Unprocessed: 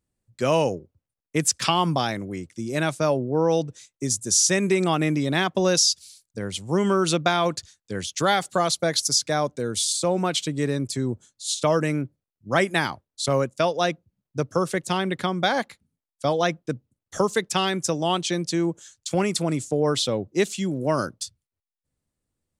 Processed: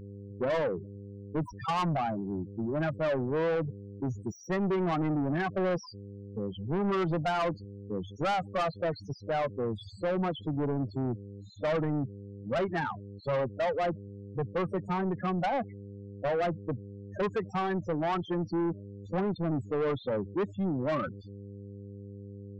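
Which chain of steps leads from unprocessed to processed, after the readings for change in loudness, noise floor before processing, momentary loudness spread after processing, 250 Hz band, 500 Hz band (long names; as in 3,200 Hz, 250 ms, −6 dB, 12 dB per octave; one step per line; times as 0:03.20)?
−8.0 dB, below −85 dBFS, 13 LU, −6.0 dB, −6.5 dB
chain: stylus tracing distortion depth 0.13 ms
high-pass filter 57 Hz 12 dB per octave
dynamic equaliser 1,100 Hz, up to +3 dB, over −32 dBFS, Q 1.5
hum with harmonics 100 Hz, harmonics 18, −42 dBFS −4 dB per octave
spectral peaks only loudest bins 8
Savitzky-Golay smoothing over 41 samples
soft clipping −25.5 dBFS, distortion −8 dB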